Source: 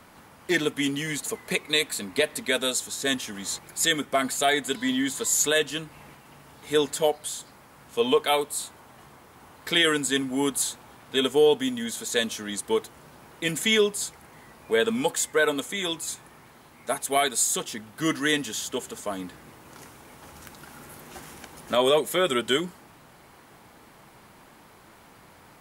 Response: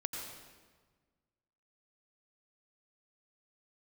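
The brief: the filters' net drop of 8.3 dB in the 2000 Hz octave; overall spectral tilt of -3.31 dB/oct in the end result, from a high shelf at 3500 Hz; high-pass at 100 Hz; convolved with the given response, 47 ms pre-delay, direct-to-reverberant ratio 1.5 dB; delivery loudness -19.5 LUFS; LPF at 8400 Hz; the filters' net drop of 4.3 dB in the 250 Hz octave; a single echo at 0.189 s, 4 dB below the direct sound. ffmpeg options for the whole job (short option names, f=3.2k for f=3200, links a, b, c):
-filter_complex "[0:a]highpass=100,lowpass=8.4k,equalizer=f=250:t=o:g=-5,equalizer=f=2k:t=o:g=-8,highshelf=f=3.5k:g=-8.5,aecho=1:1:189:0.631,asplit=2[a][b];[1:a]atrim=start_sample=2205,adelay=47[c];[b][c]afir=irnorm=-1:irlink=0,volume=-3dB[d];[a][d]amix=inputs=2:normalize=0,volume=6.5dB"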